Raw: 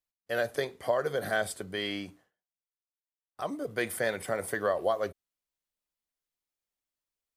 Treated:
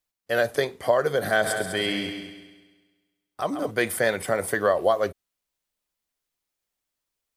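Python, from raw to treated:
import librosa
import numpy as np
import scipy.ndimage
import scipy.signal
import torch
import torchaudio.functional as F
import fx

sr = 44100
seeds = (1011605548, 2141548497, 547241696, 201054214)

y = fx.echo_heads(x, sr, ms=67, heads='second and third', feedback_pct=42, wet_db=-9.0, at=(1.42, 3.7), fade=0.02)
y = F.gain(torch.from_numpy(y), 7.0).numpy()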